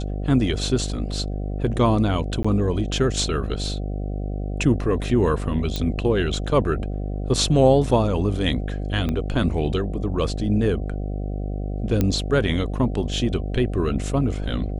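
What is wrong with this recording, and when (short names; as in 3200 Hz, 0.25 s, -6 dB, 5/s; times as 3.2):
buzz 50 Hz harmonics 15 -27 dBFS
2.43–2.44 gap 15 ms
5.76 pop -12 dBFS
9.09 pop -14 dBFS
12.01 pop -8 dBFS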